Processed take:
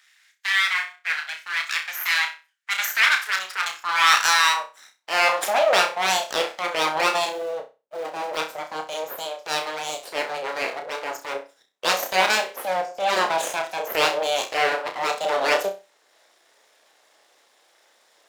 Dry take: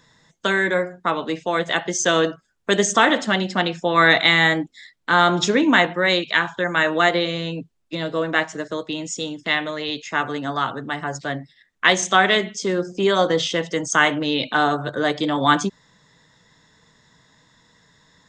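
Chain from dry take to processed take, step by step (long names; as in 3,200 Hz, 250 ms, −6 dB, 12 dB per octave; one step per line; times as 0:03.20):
0:07.29–0:08.37: running median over 41 samples
full-wave rectification
high-pass filter sweep 1,800 Hz → 540 Hz, 0:02.79–0:06.19
transient designer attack −7 dB, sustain −3 dB
on a send: flutter between parallel walls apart 5.5 metres, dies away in 0.28 s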